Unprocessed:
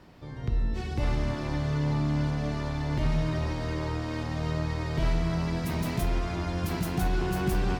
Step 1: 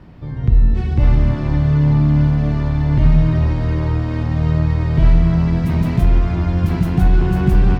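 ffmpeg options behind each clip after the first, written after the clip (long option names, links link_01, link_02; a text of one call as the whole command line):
ffmpeg -i in.wav -af "bass=frequency=250:gain=10,treble=frequency=4000:gain=-10,volume=5.5dB" out.wav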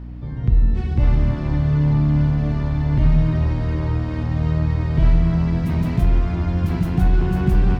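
ffmpeg -i in.wav -af "aeval=exprs='val(0)+0.0398*(sin(2*PI*60*n/s)+sin(2*PI*2*60*n/s)/2+sin(2*PI*3*60*n/s)/3+sin(2*PI*4*60*n/s)/4+sin(2*PI*5*60*n/s)/5)':channel_layout=same,volume=-3.5dB" out.wav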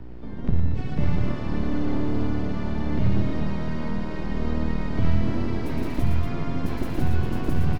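ffmpeg -i in.wav -filter_complex "[0:a]acrossover=split=210|3000[link_01][link_02][link_03];[link_02]acompressor=threshold=-27dB:ratio=6[link_04];[link_01][link_04][link_03]amix=inputs=3:normalize=0,acrossover=split=370|810[link_05][link_06][link_07];[link_05]aeval=exprs='abs(val(0))':channel_layout=same[link_08];[link_07]aecho=1:1:113.7|236.2:0.631|0.447[link_09];[link_08][link_06][link_09]amix=inputs=3:normalize=0,volume=-3dB" out.wav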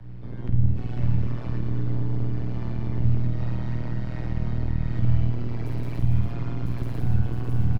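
ffmpeg -i in.wav -filter_complex "[0:a]tremolo=f=120:d=0.947,asplit=2[link_01][link_02];[link_02]adelay=50,volume=-4dB[link_03];[link_01][link_03]amix=inputs=2:normalize=0,acrossover=split=170[link_04][link_05];[link_05]acompressor=threshold=-35dB:ratio=6[link_06];[link_04][link_06]amix=inputs=2:normalize=0" out.wav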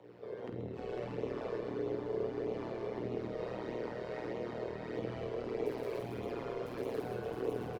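ffmpeg -i in.wav -filter_complex "[0:a]highpass=frequency=450:width_type=q:width=4.9,asplit=9[link_01][link_02][link_03][link_04][link_05][link_06][link_07][link_08][link_09];[link_02]adelay=132,afreqshift=-35,volume=-10.5dB[link_10];[link_03]adelay=264,afreqshift=-70,volume=-14.2dB[link_11];[link_04]adelay=396,afreqshift=-105,volume=-18dB[link_12];[link_05]adelay=528,afreqshift=-140,volume=-21.7dB[link_13];[link_06]adelay=660,afreqshift=-175,volume=-25.5dB[link_14];[link_07]adelay=792,afreqshift=-210,volume=-29.2dB[link_15];[link_08]adelay=924,afreqshift=-245,volume=-33dB[link_16];[link_09]adelay=1056,afreqshift=-280,volume=-36.7dB[link_17];[link_01][link_10][link_11][link_12][link_13][link_14][link_15][link_16][link_17]amix=inputs=9:normalize=0,flanger=delay=0.3:depth=1.6:regen=-41:speed=1.6:shape=sinusoidal" out.wav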